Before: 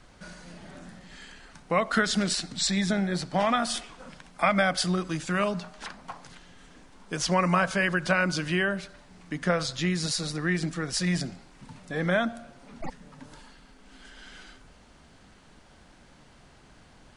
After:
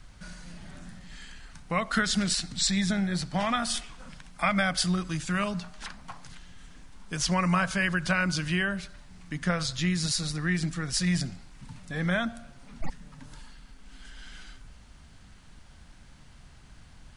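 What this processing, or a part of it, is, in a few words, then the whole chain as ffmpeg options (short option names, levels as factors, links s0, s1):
smiley-face EQ: -af "lowshelf=f=170:g=8.5,equalizer=f=430:t=o:w=2.1:g=-8.5,highshelf=f=9500:g=4"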